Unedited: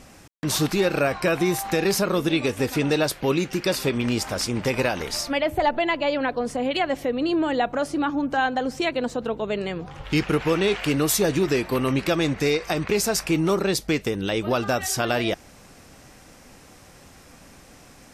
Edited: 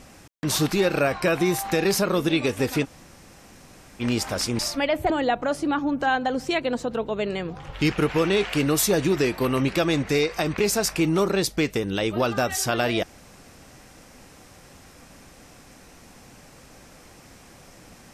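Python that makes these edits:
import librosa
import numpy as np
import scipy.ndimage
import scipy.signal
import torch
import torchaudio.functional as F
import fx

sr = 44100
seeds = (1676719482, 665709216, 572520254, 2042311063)

y = fx.edit(x, sr, fx.room_tone_fill(start_s=2.84, length_s=1.17, crossfade_s=0.04),
    fx.cut(start_s=4.59, length_s=0.53),
    fx.cut(start_s=5.63, length_s=1.78), tone=tone)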